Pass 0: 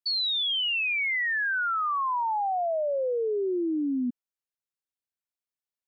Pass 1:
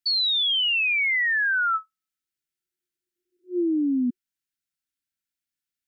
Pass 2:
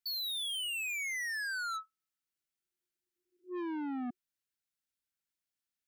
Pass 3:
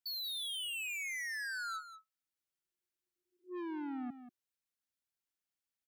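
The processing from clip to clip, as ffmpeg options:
ffmpeg -i in.wav -af "afftfilt=real='re*(1-between(b*sr/4096,360,1300))':imag='im*(1-between(b*sr/4096,360,1300))':win_size=4096:overlap=0.75,volume=4.5dB" out.wav
ffmpeg -i in.wav -af "asoftclip=type=tanh:threshold=-32.5dB,volume=-3.5dB" out.wav
ffmpeg -i in.wav -af "aecho=1:1:186:0.251,volume=-3.5dB" out.wav

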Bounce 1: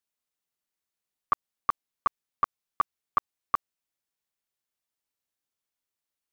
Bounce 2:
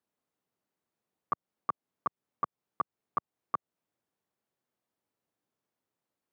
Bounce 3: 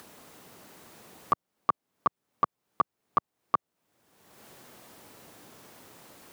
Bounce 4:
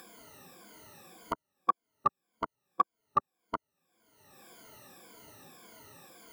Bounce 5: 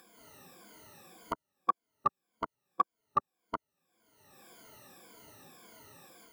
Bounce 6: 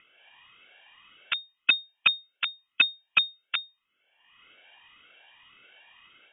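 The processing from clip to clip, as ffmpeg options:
ffmpeg -i in.wav -af "highpass=120,tiltshelf=frequency=1500:gain=9.5,alimiter=limit=-23.5dB:level=0:latency=1:release=214,volume=3dB" out.wav
ffmpeg -i in.wav -af "acompressor=mode=upward:threshold=-35dB:ratio=2.5,volume=6.5dB" out.wav
ffmpeg -i in.wav -af "afftfilt=real='re*pow(10,20/40*sin(2*PI*(1.8*log(max(b,1)*sr/1024/100)/log(2)-(-1.8)*(pts-256)/sr)))':imag='im*pow(10,20/40*sin(2*PI*(1.8*log(max(b,1)*sr/1024/100)/log(2)-(-1.8)*(pts-256)/sr)))':win_size=1024:overlap=0.75,volume=-6dB" out.wav
ffmpeg -i in.wav -af "dynaudnorm=framelen=130:gausssize=3:maxgain=6.5dB,volume=-8dB" out.wav
ffmpeg -i in.wav -af "highpass=650,aeval=exprs='0.158*(cos(1*acos(clip(val(0)/0.158,-1,1)))-cos(1*PI/2))+0.0316*(cos(3*acos(clip(val(0)/0.158,-1,1)))-cos(3*PI/2))+0.0282*(cos(4*acos(clip(val(0)/0.158,-1,1)))-cos(4*PI/2))+0.00794*(cos(5*acos(clip(val(0)/0.158,-1,1)))-cos(5*PI/2))+0.0158*(cos(8*acos(clip(val(0)/0.158,-1,1)))-cos(8*PI/2))':channel_layout=same,lowpass=frequency=3100:width_type=q:width=0.5098,lowpass=frequency=3100:width_type=q:width=0.6013,lowpass=frequency=3100:width_type=q:width=0.9,lowpass=frequency=3100:width_type=q:width=2.563,afreqshift=-3700,volume=8.5dB" out.wav

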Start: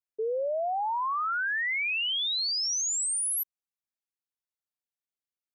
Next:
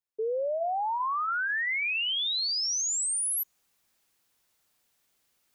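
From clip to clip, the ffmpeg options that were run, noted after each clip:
ffmpeg -i in.wav -af "bandreject=frequency=322.6:width_type=h:width=4,bandreject=frequency=645.2:width_type=h:width=4,bandreject=frequency=967.8:width_type=h:width=4,bandreject=frequency=1290.4:width_type=h:width=4,bandreject=frequency=1613:width_type=h:width=4,bandreject=frequency=1935.6:width_type=h:width=4,bandreject=frequency=2258.2:width_type=h:width=4,bandreject=frequency=2580.8:width_type=h:width=4,bandreject=frequency=2903.4:width_type=h:width=4,bandreject=frequency=3226:width_type=h:width=4,bandreject=frequency=3548.6:width_type=h:width=4,bandreject=frequency=3871.2:width_type=h:width=4,bandreject=frequency=4193.8:width_type=h:width=4,bandreject=frequency=4516.4:width_type=h:width=4,bandreject=frequency=4839:width_type=h:width=4,bandreject=frequency=5161.6:width_type=h:width=4,bandreject=frequency=5484.2:width_type=h:width=4,bandreject=frequency=5806.8:width_type=h:width=4,bandreject=frequency=6129.4:width_type=h:width=4,bandreject=frequency=6452:width_type=h:width=4,bandreject=frequency=6774.6:width_type=h:width=4,areverse,acompressor=mode=upward:threshold=-54dB:ratio=2.5,areverse" out.wav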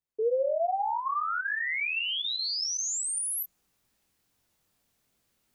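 ffmpeg -i in.wav -af "lowshelf=frequency=410:gain=11,flanger=delay=18.5:depth=7.3:speed=2.5,volume=1dB" out.wav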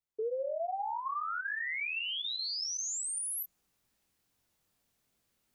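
ffmpeg -i in.wav -af "acompressor=threshold=-29dB:ratio=4,volume=-3.5dB" out.wav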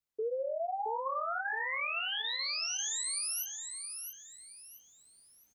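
ffmpeg -i in.wav -af "aecho=1:1:670|1340|2010|2680:0.473|0.151|0.0485|0.0155" out.wav

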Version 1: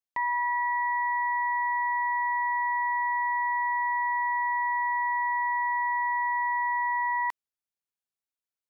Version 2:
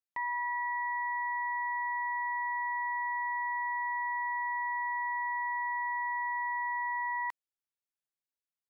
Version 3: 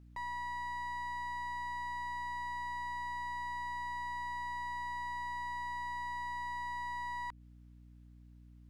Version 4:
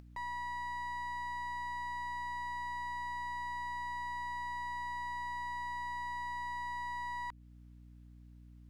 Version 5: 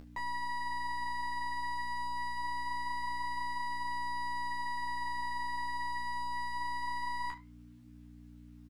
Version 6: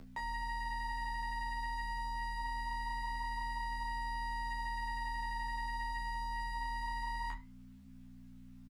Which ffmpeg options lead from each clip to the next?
ffmpeg -i in.wav -af "equalizer=frequency=1700:width=1.5:gain=3,volume=-7.5dB" out.wav
ffmpeg -i in.wav -filter_complex "[0:a]alimiter=level_in=15dB:limit=-24dB:level=0:latency=1:release=156,volume=-15dB,asplit=2[link_01][link_02];[link_02]highpass=frequency=720:poles=1,volume=21dB,asoftclip=type=tanh:threshold=-39dB[link_03];[link_01][link_03]amix=inputs=2:normalize=0,lowpass=frequency=1800:poles=1,volume=-6dB,aeval=exprs='val(0)+0.00112*(sin(2*PI*60*n/s)+sin(2*PI*2*60*n/s)/2+sin(2*PI*3*60*n/s)/3+sin(2*PI*4*60*n/s)/4+sin(2*PI*5*60*n/s)/5)':channel_layout=same,volume=4dB" out.wav
ffmpeg -i in.wav -af "acompressor=mode=upward:threshold=-51dB:ratio=2.5" out.wav
ffmpeg -i in.wav -filter_complex "[0:a]flanger=delay=7:depth=8.2:regen=-80:speed=0.24:shape=sinusoidal,asplit=2[link_01][link_02];[link_02]adelay=26,volume=-7dB[link_03];[link_01][link_03]amix=inputs=2:normalize=0,aecho=1:1:13|73:0.668|0.133,volume=8dB" out.wav
ffmpeg -i in.wav -filter_complex "[0:a]afreqshift=-41,asoftclip=type=tanh:threshold=-30dB,asplit=2[link_01][link_02];[link_02]adelay=34,volume=-14dB[link_03];[link_01][link_03]amix=inputs=2:normalize=0" out.wav

